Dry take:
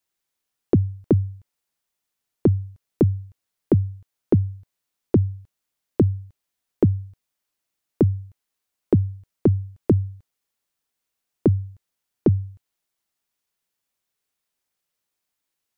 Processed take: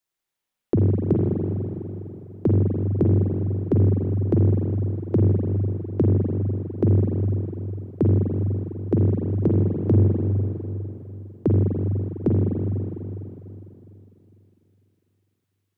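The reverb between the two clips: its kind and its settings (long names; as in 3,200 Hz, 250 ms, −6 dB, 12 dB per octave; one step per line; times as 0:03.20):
spring reverb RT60 3.3 s, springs 41/50 ms, chirp 35 ms, DRR −3 dB
level −4 dB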